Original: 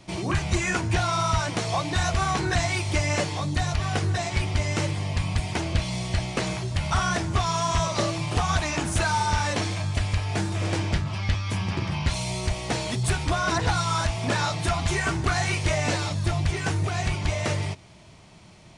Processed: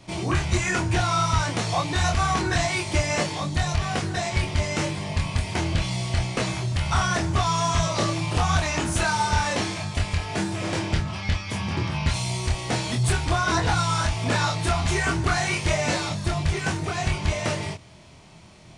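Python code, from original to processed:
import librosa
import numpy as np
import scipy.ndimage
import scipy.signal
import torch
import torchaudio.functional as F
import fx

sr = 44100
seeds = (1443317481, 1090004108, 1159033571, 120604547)

y = fx.doubler(x, sr, ms=25.0, db=-3.5)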